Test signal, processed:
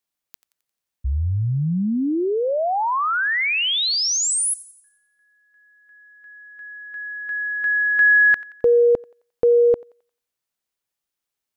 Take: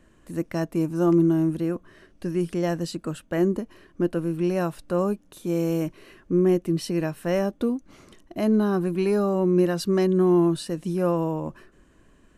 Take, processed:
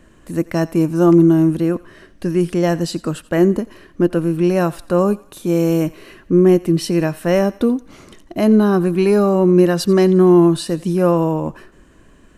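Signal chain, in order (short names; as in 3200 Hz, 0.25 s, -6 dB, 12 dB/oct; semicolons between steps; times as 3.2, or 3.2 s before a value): thinning echo 88 ms, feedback 49%, high-pass 740 Hz, level -19 dB; gain +8.5 dB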